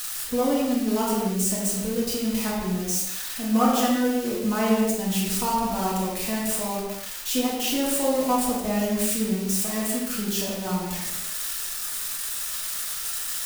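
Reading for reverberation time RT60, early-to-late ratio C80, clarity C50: not exponential, 2.5 dB, 0.0 dB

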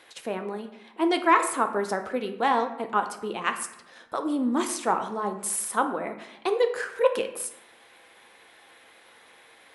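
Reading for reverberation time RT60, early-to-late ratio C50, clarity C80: 0.85 s, 10.0 dB, 12.5 dB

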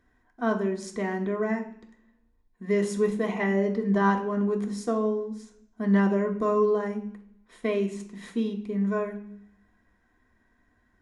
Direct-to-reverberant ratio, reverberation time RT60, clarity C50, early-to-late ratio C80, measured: 0.0 dB, 0.60 s, 11.0 dB, 14.5 dB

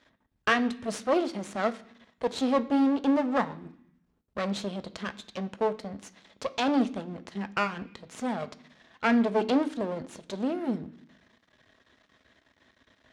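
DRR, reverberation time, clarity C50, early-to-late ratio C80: 9.5 dB, 0.65 s, 17.5 dB, 20.5 dB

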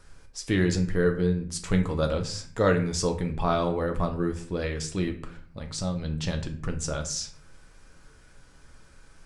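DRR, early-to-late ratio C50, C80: 3.5 dB, 11.5 dB, 15.5 dB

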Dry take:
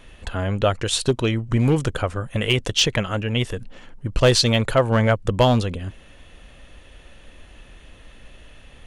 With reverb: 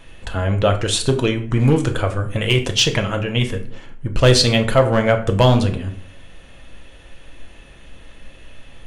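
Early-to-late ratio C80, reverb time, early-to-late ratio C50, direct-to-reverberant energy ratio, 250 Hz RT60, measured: 16.0 dB, 0.55 s, 12.0 dB, 4.0 dB, 0.80 s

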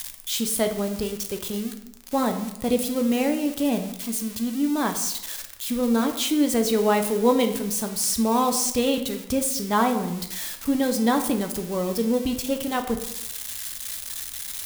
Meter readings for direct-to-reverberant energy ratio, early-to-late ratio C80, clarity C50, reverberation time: 5.0 dB, 12.0 dB, 9.5 dB, 0.85 s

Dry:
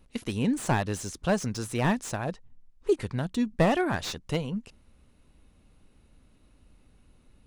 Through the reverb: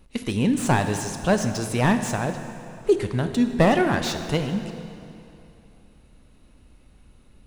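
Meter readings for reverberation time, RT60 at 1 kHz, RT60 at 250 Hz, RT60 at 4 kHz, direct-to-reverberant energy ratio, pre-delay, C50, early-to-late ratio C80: 2.8 s, 2.8 s, 2.8 s, 2.4 s, 7.0 dB, 5 ms, 8.0 dB, 9.0 dB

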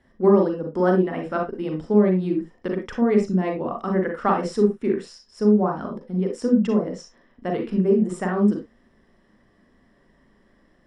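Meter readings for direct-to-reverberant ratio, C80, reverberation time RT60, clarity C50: 1.5 dB, 15.5 dB, not exponential, 7.5 dB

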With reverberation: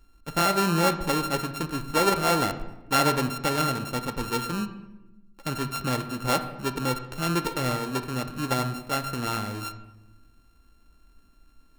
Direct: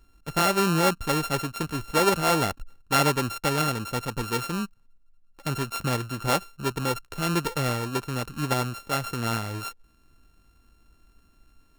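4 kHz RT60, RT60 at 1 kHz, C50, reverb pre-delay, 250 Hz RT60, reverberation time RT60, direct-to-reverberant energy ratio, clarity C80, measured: 0.70 s, 0.90 s, 11.0 dB, 3 ms, 1.4 s, 1.0 s, 8.0 dB, 13.5 dB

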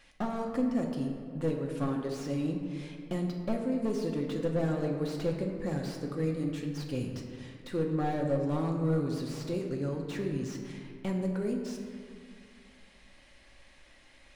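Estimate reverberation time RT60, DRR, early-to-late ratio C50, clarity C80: 2.1 s, 0.5 dB, 4.5 dB, 6.0 dB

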